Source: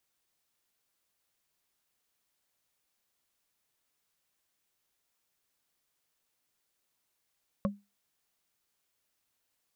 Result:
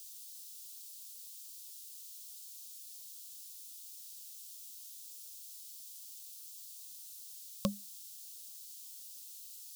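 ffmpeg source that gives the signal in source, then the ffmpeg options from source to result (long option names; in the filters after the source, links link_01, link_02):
-f lavfi -i "aevalsrc='0.0668*pow(10,-3*t/0.24)*sin(2*PI*202*t)+0.0501*pow(10,-3*t/0.071)*sin(2*PI*556.9*t)+0.0376*pow(10,-3*t/0.032)*sin(2*PI*1091.6*t)':duration=0.45:sample_rate=44100"
-af "aexciter=amount=13.4:drive=8.7:freq=3000"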